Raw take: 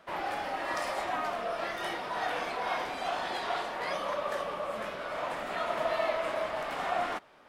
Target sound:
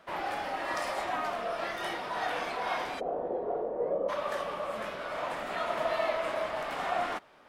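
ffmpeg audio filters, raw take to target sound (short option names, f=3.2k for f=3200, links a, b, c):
-filter_complex "[0:a]asplit=3[a][b][c];[a]afade=t=out:st=2.99:d=0.02[d];[b]lowpass=f=480:t=q:w=4.9,afade=t=in:st=2.99:d=0.02,afade=t=out:st=4.08:d=0.02[e];[c]afade=t=in:st=4.08:d=0.02[f];[d][e][f]amix=inputs=3:normalize=0"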